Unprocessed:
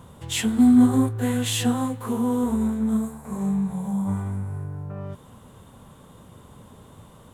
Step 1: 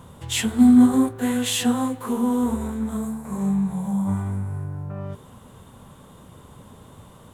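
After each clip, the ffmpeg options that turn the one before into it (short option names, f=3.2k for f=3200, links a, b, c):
-af "bandreject=f=55.12:t=h:w=4,bandreject=f=110.24:t=h:w=4,bandreject=f=165.36:t=h:w=4,bandreject=f=220.48:t=h:w=4,bandreject=f=275.6:t=h:w=4,bandreject=f=330.72:t=h:w=4,bandreject=f=385.84:t=h:w=4,bandreject=f=440.96:t=h:w=4,bandreject=f=496.08:t=h:w=4,bandreject=f=551.2:t=h:w=4,bandreject=f=606.32:t=h:w=4,bandreject=f=661.44:t=h:w=4,bandreject=f=716.56:t=h:w=4,bandreject=f=771.68:t=h:w=4,volume=2dB"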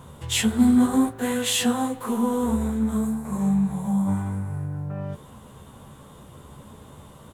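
-filter_complex "[0:a]asplit=2[a][b];[b]adelay=14,volume=-6.5dB[c];[a][c]amix=inputs=2:normalize=0"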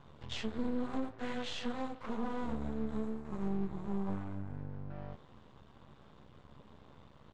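-af "aeval=exprs='max(val(0),0)':c=same,alimiter=limit=-16.5dB:level=0:latency=1:release=127,lowpass=f=5.1k:w=0.5412,lowpass=f=5.1k:w=1.3066,volume=-8.5dB"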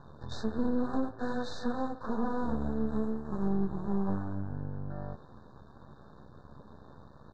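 -af "highshelf=f=6.2k:g=-12,afftfilt=real='re*(1-between(b*sr/4096,1800,3600))':imag='im*(1-between(b*sr/4096,1800,3600))':win_size=4096:overlap=0.75,volume=5.5dB"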